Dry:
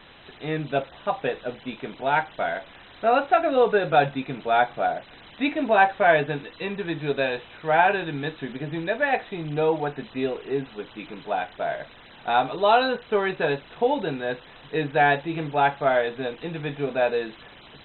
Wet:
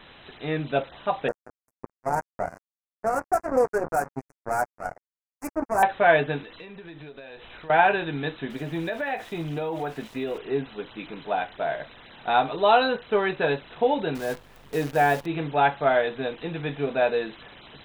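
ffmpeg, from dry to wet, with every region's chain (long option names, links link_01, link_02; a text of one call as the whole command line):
ffmpeg -i in.wav -filter_complex "[0:a]asettb=1/sr,asplit=3[link_01][link_02][link_03];[link_01]atrim=end=1.284[link_04];[link_02]atrim=start=1.28:end=5.83,asetpts=PTS-STARTPTS,afade=type=in:duration=0.004:curve=qsin,afade=type=out:start_time=4.546:duration=0.004:curve=qsin,acrossover=split=1000[link_05][link_06];[link_05]aeval=exprs='val(0)*(1-0.7/2+0.7/2*cos(2*PI*3.5*n/s))':channel_layout=same[link_07];[link_06]aeval=exprs='val(0)*(1-0.7/2-0.7/2*cos(2*PI*3.5*n/s))':channel_layout=same[link_08];[link_07][link_08]amix=inputs=2:normalize=0,acrusher=bits=3:mix=0:aa=0.5,asuperstop=centerf=3400:order=4:qfactor=0.51[link_09];[link_03]atrim=start=5.826[link_10];[link_04][link_09]acrossfade=duration=0.004:curve1=hsin:curve2=qsin[link_11];[link_11][link_10]acrossfade=duration=0.004:curve1=qsin:curve2=hsin,asettb=1/sr,asplit=3[link_12][link_13][link_14];[link_12]atrim=end=6.424[link_15];[link_13]atrim=start=6.42:end=7.7,asetpts=PTS-STARTPTS,afade=type=in:duration=0.004:curve=qsin,afade=type=out:start_time=1.276:duration=0.004:curve=qsin,asubboost=boost=9:cutoff=54,acompressor=threshold=-38dB:ratio=16:attack=3.2:release=140:knee=1:detection=peak[link_16];[link_14]atrim=start=7.696[link_17];[link_15][link_16]acrossfade=duration=0.004:curve1=hsin:curve2=qsin[link_18];[link_18][link_17]acrossfade=duration=0.004:curve1=qsin:curve2=hsin,asettb=1/sr,asplit=3[link_19][link_20][link_21];[link_19]atrim=end=8.504[link_22];[link_20]atrim=start=8.5:end=10.38,asetpts=PTS-STARTPTS,afade=type=in:duration=0.004:curve=qsin,afade=type=out:start_time=1.876:duration=0.004:curve=qsin,aeval=exprs='val(0)*gte(abs(val(0)),0.00562)':channel_layout=same,acompressor=threshold=-25dB:ratio=5:attack=3.2:release=140:knee=1:detection=peak,asplit=2[link_23][link_24];[link_24]adelay=18,volume=-13dB[link_25];[link_23][link_25]amix=inputs=2:normalize=0,atrim=end_sample=82908[link_26];[link_21]atrim=start=10.376[link_27];[link_22][link_26]acrossfade=duration=0.004:curve1=hsin:curve2=qsin[link_28];[link_28][link_27]acrossfade=duration=0.004:curve1=qsin:curve2=hsin,asettb=1/sr,asplit=3[link_29][link_30][link_31];[link_29]atrim=end=14.154[link_32];[link_30]atrim=start=14.15:end=15.26,asetpts=PTS-STARTPTS,afade=type=in:duration=0.004:curve=qsin,afade=type=out:start_time=1.106:duration=0.004:curve=qsin,highshelf=frequency=2300:gain=-10.5,acrusher=bits=7:dc=4:mix=0:aa=0.000001,aeval=exprs='val(0)+0.00158*(sin(2*PI*50*n/s)+sin(2*PI*2*50*n/s)/2+sin(2*PI*3*50*n/s)/3+sin(2*PI*4*50*n/s)/4+sin(2*PI*5*50*n/s)/5)':channel_layout=same[link_33];[link_31]atrim=start=15.256[link_34];[link_32][link_33]acrossfade=duration=0.004:curve1=hsin:curve2=qsin[link_35];[link_35][link_34]acrossfade=duration=0.004:curve1=qsin:curve2=hsin" out.wav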